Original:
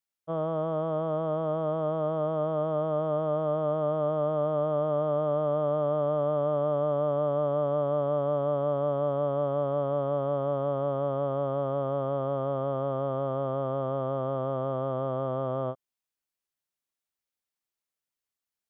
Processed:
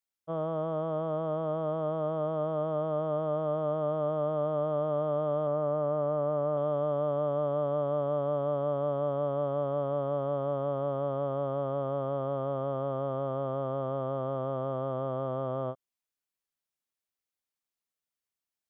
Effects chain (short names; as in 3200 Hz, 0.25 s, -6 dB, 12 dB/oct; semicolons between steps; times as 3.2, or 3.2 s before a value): 5.47–6.57 LPF 2700 Hz 24 dB/oct; gain -2.5 dB